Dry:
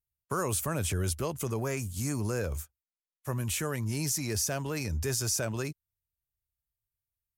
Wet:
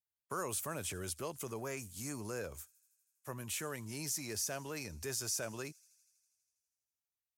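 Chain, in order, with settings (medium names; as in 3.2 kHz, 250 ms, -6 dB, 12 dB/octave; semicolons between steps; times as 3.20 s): high-pass 300 Hz 6 dB/octave; on a send: feedback echo behind a high-pass 81 ms, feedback 77%, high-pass 4.9 kHz, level -21 dB; on the sum: trim -6.5 dB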